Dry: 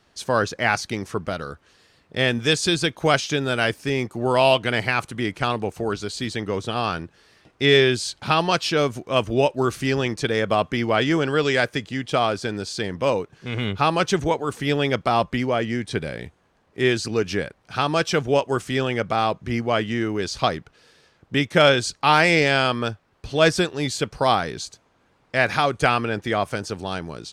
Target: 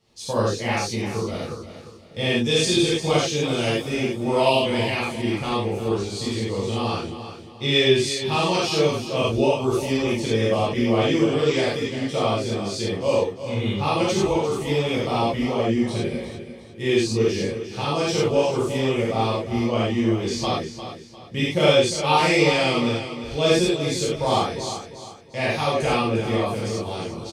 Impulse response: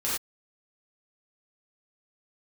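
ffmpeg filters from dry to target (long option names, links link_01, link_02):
-filter_complex "[0:a]equalizer=frequency=1500:width_type=o:width=0.59:gain=-15,aecho=1:1:351|702|1053|1404:0.282|0.0986|0.0345|0.0121[link_01];[1:a]atrim=start_sample=2205[link_02];[link_01][link_02]afir=irnorm=-1:irlink=0,volume=-7dB"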